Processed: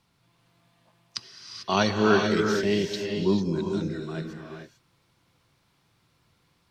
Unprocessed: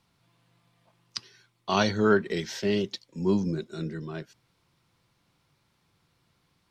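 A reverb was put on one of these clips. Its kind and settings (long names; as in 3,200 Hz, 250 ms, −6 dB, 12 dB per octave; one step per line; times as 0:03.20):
reverb whose tail is shaped and stops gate 470 ms rising, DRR 2 dB
level +1 dB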